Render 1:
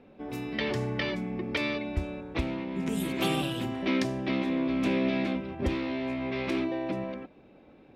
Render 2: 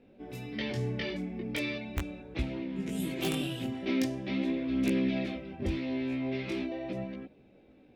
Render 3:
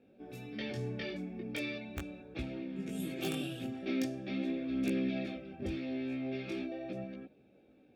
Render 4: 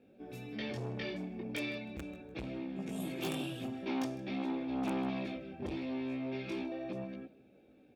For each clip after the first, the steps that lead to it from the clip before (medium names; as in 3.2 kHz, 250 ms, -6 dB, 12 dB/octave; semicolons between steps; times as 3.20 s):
peaking EQ 1.1 kHz -9 dB 1 oct; integer overflow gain 18 dB; chorus voices 2, 0.41 Hz, delay 19 ms, depth 4.5 ms
comb of notches 1 kHz; trim -4 dB
feedback delay 155 ms, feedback 31%, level -22 dB; transformer saturation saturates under 770 Hz; trim +1 dB